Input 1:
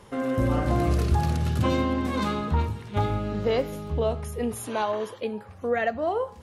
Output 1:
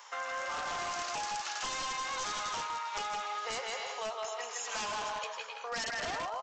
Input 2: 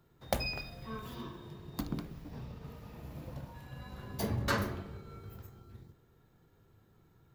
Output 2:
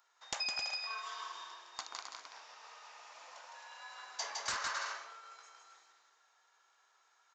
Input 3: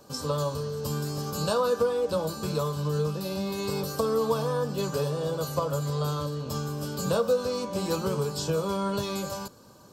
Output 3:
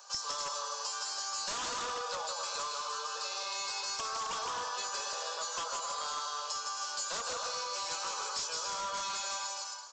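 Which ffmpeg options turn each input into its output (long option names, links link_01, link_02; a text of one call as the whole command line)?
ffmpeg -i in.wav -af "highpass=frequency=850:width=0.5412,highpass=frequency=850:width=1.3066,aecho=1:1:160|264|331.6|375.5|404.1:0.631|0.398|0.251|0.158|0.1,aresample=16000,aeval=exprs='0.0316*(abs(mod(val(0)/0.0316+3,4)-2)-1)':channel_layout=same,aresample=44100,aexciter=amount=2:drive=5.1:freq=5200,acompressor=threshold=-38dB:ratio=4,volume=3.5dB" out.wav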